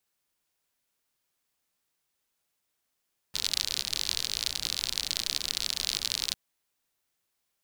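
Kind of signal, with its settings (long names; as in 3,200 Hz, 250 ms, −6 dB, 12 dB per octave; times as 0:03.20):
rain-like ticks over hiss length 3.00 s, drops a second 56, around 4,200 Hz, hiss −15 dB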